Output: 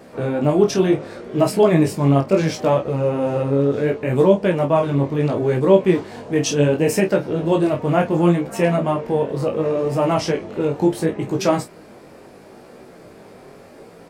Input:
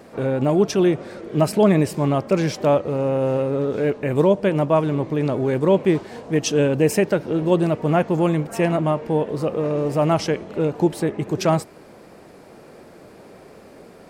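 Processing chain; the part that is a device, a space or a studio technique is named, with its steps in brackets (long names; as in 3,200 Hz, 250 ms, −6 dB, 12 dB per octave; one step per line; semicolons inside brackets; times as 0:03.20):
double-tracked vocal (double-tracking delay 29 ms −8 dB; chorus effect 0.7 Hz, delay 15.5 ms, depth 6.2 ms)
level +4 dB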